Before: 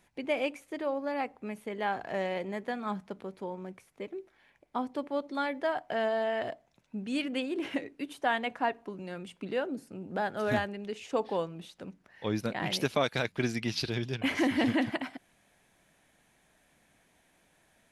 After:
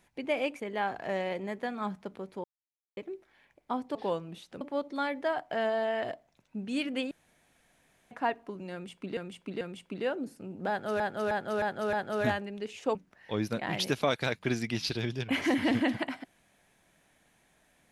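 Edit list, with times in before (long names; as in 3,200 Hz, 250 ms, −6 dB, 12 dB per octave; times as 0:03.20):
0:00.60–0:01.65: remove
0:03.49–0:04.02: silence
0:07.50–0:08.50: fill with room tone
0:09.12–0:09.56: repeat, 3 plays
0:10.20–0:10.51: repeat, 5 plays
0:11.22–0:11.88: move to 0:05.00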